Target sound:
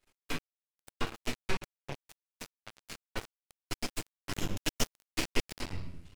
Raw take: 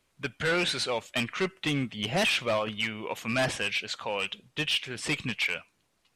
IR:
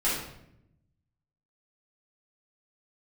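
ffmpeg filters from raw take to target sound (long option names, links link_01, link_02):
-filter_complex "[0:a]acompressor=threshold=-43dB:ratio=4,aeval=exprs='0.0398*(cos(1*acos(clip(val(0)/0.0398,-1,1)))-cos(1*PI/2))+0.00891*(cos(7*acos(clip(val(0)/0.0398,-1,1)))-cos(7*PI/2))+0.0178*(cos(8*acos(clip(val(0)/0.0398,-1,1)))-cos(8*PI/2))':channel_layout=same[link_01];[1:a]atrim=start_sample=2205[link_02];[link_01][link_02]afir=irnorm=-1:irlink=0,asettb=1/sr,asplit=3[link_03][link_04][link_05];[link_03]atrim=end=4.324[link_06];[link_04]atrim=start=4.32:end=5.45,asetpts=PTS-STARTPTS,afade=type=in:duration=0.004:curve=qsin,afade=type=out:start_time=1.126:duration=0.004:curve=qsin,acontrast=31[link_07];[link_05]atrim=start=5.446[link_08];[link_06][link_07]acrossfade=duration=0.004:curve1=hsin:curve2=qsin[link_09];[link_09][link_08]acrossfade=duration=0.004:curve1=qsin:curve2=hsin,aeval=exprs='max(val(0),0)':channel_layout=same"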